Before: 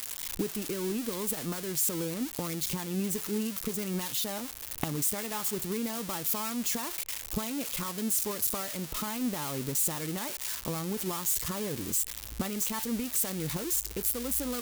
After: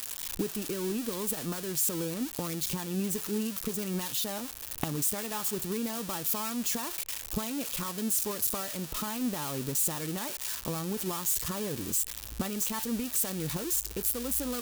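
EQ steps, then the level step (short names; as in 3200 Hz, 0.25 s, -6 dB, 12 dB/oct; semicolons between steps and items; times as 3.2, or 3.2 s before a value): notch 2100 Hz, Q 14; 0.0 dB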